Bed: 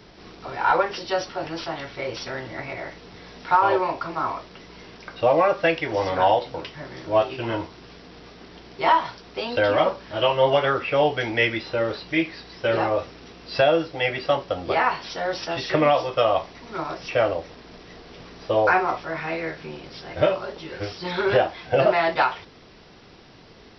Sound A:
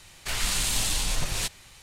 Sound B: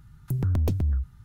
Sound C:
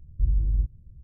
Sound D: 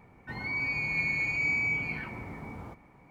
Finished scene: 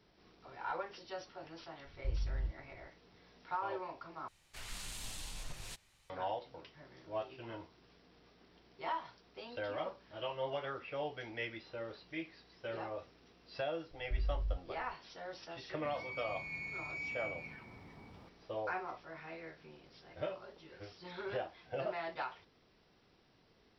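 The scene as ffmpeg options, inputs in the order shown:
ffmpeg -i bed.wav -i cue0.wav -i cue1.wav -i cue2.wav -i cue3.wav -filter_complex "[3:a]asplit=2[link_01][link_02];[0:a]volume=-20dB[link_03];[1:a]highshelf=frequency=4900:gain=-3.5[link_04];[link_02]equalizer=frequency=210:width=0.66:gain=-13[link_05];[link_03]asplit=2[link_06][link_07];[link_06]atrim=end=4.284[link_08];[link_04]atrim=end=1.82,asetpts=PTS-STARTPTS,volume=-17.5dB[link_09];[link_07]atrim=start=6.096[link_10];[link_01]atrim=end=1.03,asetpts=PTS-STARTPTS,volume=-13.5dB,afade=type=in:duration=0.004:curve=hsin,afade=type=out:start_time=1.026:duration=0.004:curve=hsin,adelay=1850[link_11];[link_05]atrim=end=1.03,asetpts=PTS-STARTPTS,volume=-10.5dB,afade=type=in:duration=0.004:curve=hsin,afade=type=out:start_time=1.026:duration=0.004:curve=hsin,adelay=13910[link_12];[4:a]atrim=end=3.1,asetpts=PTS-STARTPTS,volume=-14dB,afade=type=in:duration=0.004:curve=hsin,afade=type=out:start_time=3.096:duration=0.004:curve=hsin,adelay=15550[link_13];[link_08][link_09]acrossfade=duration=0.004:curve1=hsin:curve2=hsin[link_14];[link_14][link_10]acrossfade=duration=0.004:curve1=hsin:curve2=hsin[link_15];[link_15][link_11][link_12][link_13]amix=inputs=4:normalize=0" out.wav

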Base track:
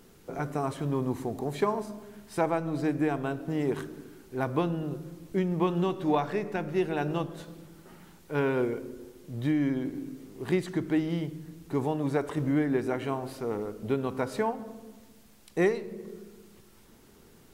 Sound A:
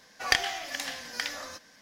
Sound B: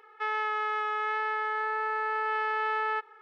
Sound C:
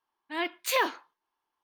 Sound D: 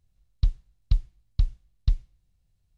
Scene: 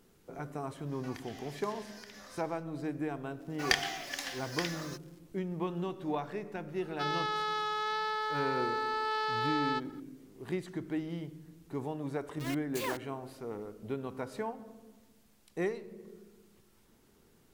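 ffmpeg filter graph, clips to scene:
ffmpeg -i bed.wav -i cue0.wav -i cue1.wav -i cue2.wav -filter_complex "[1:a]asplit=2[link_01][link_02];[0:a]volume=-8.5dB[link_03];[link_01]acompressor=threshold=-44dB:ratio=6:attack=3.2:release=140:knee=1:detection=peak[link_04];[link_02]acrusher=bits=7:mix=0:aa=0.5[link_05];[2:a]highshelf=frequency=3100:width_type=q:width=3:gain=10.5[link_06];[3:a]acrusher=bits=4:mix=0:aa=0.000001[link_07];[link_04]atrim=end=1.81,asetpts=PTS-STARTPTS,volume=-4.5dB,afade=type=in:duration=0.1,afade=type=out:start_time=1.71:duration=0.1,adelay=840[link_08];[link_05]atrim=end=1.81,asetpts=PTS-STARTPTS,volume=-4dB,afade=type=in:duration=0.004:curve=hsin,afade=type=out:start_time=1.806:duration=0.004:curve=hsin,adelay=3390[link_09];[link_06]atrim=end=3.21,asetpts=PTS-STARTPTS,volume=-1.5dB,afade=type=in:duration=0.004:curve=hsin,afade=type=out:start_time=3.206:duration=0.004:curve=hsin,adelay=6790[link_10];[link_07]atrim=end=1.63,asetpts=PTS-STARTPTS,volume=-12dB,afade=type=in:duration=0.004:curve=hsin,afade=type=out:start_time=1.626:duration=0.004:curve=hsin,adelay=12080[link_11];[link_03][link_08][link_09][link_10][link_11]amix=inputs=5:normalize=0" out.wav

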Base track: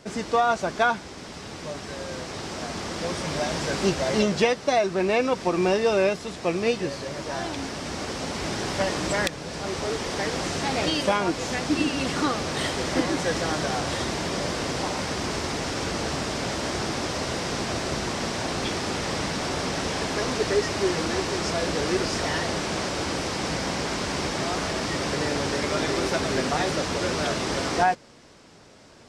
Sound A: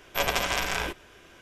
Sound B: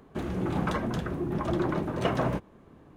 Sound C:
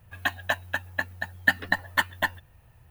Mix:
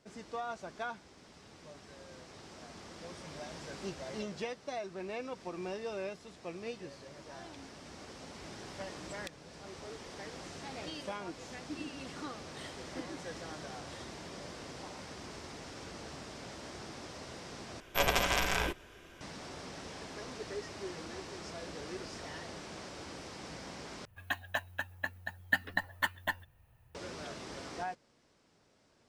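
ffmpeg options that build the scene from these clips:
ffmpeg -i bed.wav -i cue0.wav -i cue1.wav -i cue2.wav -filter_complex "[0:a]volume=-18dB[link_01];[1:a]lowshelf=frequency=460:gain=3.5[link_02];[link_01]asplit=3[link_03][link_04][link_05];[link_03]atrim=end=17.804[link_06];[link_02]atrim=end=1.41,asetpts=PTS-STARTPTS,volume=-3.5dB[link_07];[link_04]atrim=start=19.206:end=24.054[link_08];[3:a]atrim=end=2.9,asetpts=PTS-STARTPTS,volume=-8.5dB[link_09];[link_05]atrim=start=26.946[link_10];[link_06][link_07]acrossfade=duration=0.004:curve1=hsin:curve2=hsin[link_11];[link_11][link_08]acrossfade=duration=0.004:curve1=hsin:curve2=hsin[link_12];[link_12][link_09]acrossfade=duration=0.004:curve1=hsin:curve2=hsin[link_13];[link_13][link_10]acrossfade=duration=0.004:curve1=hsin:curve2=hsin" out.wav

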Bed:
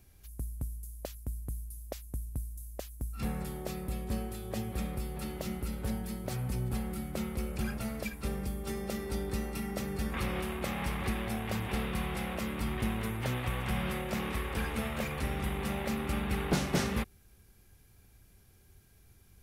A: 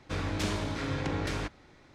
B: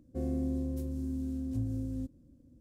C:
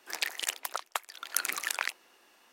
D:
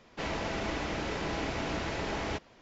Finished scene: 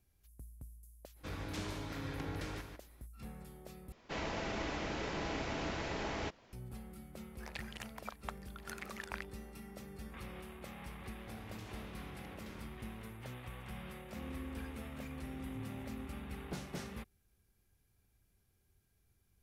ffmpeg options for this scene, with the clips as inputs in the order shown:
ffmpeg -i bed.wav -i cue0.wav -i cue1.wav -i cue2.wav -i cue3.wav -filter_complex "[1:a]asplit=2[link_01][link_02];[0:a]volume=-14dB[link_03];[link_01]aecho=1:1:148:0.447[link_04];[3:a]lowpass=frequency=1200:poles=1[link_05];[link_02]acompressor=threshold=-43dB:ratio=6:attack=3.2:release=140:knee=1:detection=peak[link_06];[2:a]aecho=1:1:1021:0.473[link_07];[link_03]asplit=2[link_08][link_09];[link_08]atrim=end=3.924[link_10];[4:a]atrim=end=2.61,asetpts=PTS-STARTPTS,volume=-5dB[link_11];[link_09]atrim=start=6.526[link_12];[link_04]atrim=end=1.94,asetpts=PTS-STARTPTS,volume=-10.5dB,afade=type=in:duration=0.05,afade=type=out:start_time=1.89:duration=0.05,adelay=1140[link_13];[link_05]atrim=end=2.52,asetpts=PTS-STARTPTS,volume=-7dB,afade=type=in:duration=0.004:curve=hsin,afade=type=out:start_time=2.516:duration=0.004:curve=hsin,adelay=7330[link_14];[link_06]atrim=end=1.94,asetpts=PTS-STARTPTS,volume=-7.5dB,afade=type=in:duration=0.004:curve=hsin,afade=type=out:start_time=1.936:duration=0.004:curve=hsin,adelay=11190[link_15];[link_07]atrim=end=2.6,asetpts=PTS-STARTPTS,volume=-13dB,afade=type=in:duration=0.004:curve=hsin,afade=type=out:start_time=2.596:duration=0.004:curve=hsin,adelay=14000[link_16];[link_10][link_11]acrossfade=duration=0.004:curve1=hsin:curve2=hsin[link_17];[link_17][link_12]acrossfade=duration=0.004:curve1=hsin:curve2=hsin[link_18];[link_18][link_13][link_14][link_15][link_16]amix=inputs=5:normalize=0" out.wav

